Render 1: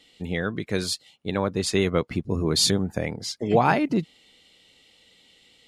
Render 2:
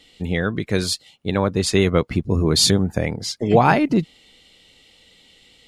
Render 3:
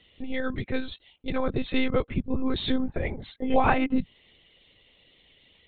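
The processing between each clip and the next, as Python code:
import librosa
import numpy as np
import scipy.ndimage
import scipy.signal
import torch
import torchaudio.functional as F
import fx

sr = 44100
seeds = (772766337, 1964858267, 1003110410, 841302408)

y1 = fx.low_shelf(x, sr, hz=68.0, db=10.5)
y1 = F.gain(torch.from_numpy(y1), 4.5).numpy()
y2 = fx.lpc_monotone(y1, sr, seeds[0], pitch_hz=260.0, order=16)
y2 = F.gain(torch.from_numpy(y2), -6.0).numpy()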